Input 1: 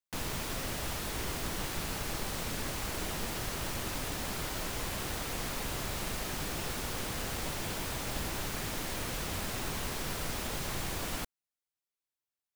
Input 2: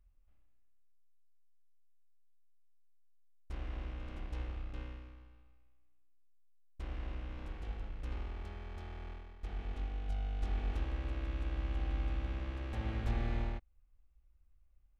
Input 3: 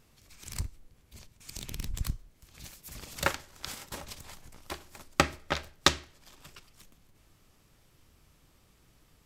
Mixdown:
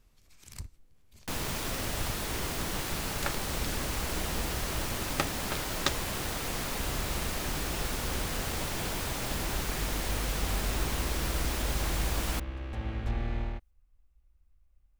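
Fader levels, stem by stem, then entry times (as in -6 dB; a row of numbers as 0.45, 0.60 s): +2.5, +2.5, -7.0 dB; 1.15, 0.00, 0.00 s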